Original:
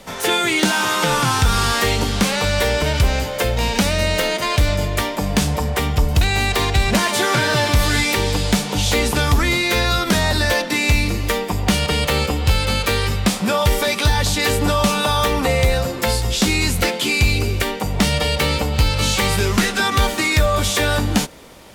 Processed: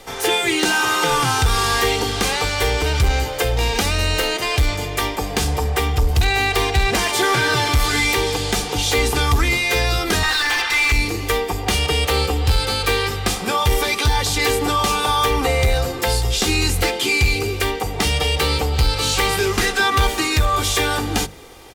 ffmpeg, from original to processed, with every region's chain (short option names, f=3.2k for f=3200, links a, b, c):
-filter_complex "[0:a]asettb=1/sr,asplit=3[a][b][c];[a]atrim=end=10.234[d];[b]atrim=start=10.23:end=10.92,asetpts=PTS-STARTPTS,afade=t=in:d=0.004:c=qsin,afade=t=out:st=0.686:d=0.004:c=qsin,highpass=f=1.1k:w=0.5412,highpass=f=1.1k:w=1.3066,asplit=2[e][f];[f]highpass=f=720:p=1,volume=24dB,asoftclip=type=tanh:threshold=-8dB[g];[e][g]amix=inputs=2:normalize=0,lowpass=f=2.2k:p=1,volume=-6dB[h];[c]atrim=start=10.916[i];[d][h]acrossfade=d=0.004:c1=hsin:c2=qsin[j];[j][i]acrossfade=d=0.004:c1=qsin:c2=hsin,bandreject=f=50:t=h:w=6,bandreject=f=100:t=h:w=6,bandreject=f=150:t=h:w=6,bandreject=f=200:t=h:w=6,bandreject=f=250:t=h:w=6,bandreject=f=300:t=h:w=6,bandreject=f=350:t=h:w=6,aecho=1:1:2.5:0.61,acontrast=54,volume=-6.5dB"